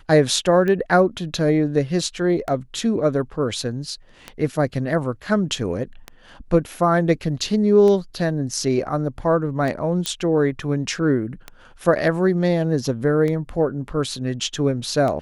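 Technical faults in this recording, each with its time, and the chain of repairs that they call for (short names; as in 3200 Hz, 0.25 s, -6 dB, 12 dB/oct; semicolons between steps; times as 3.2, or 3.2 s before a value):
tick 33 1/3 rpm -14 dBFS
10.06 pop -8 dBFS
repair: de-click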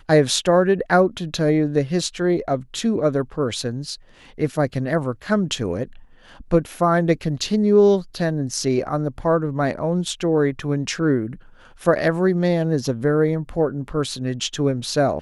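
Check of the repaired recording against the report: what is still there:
none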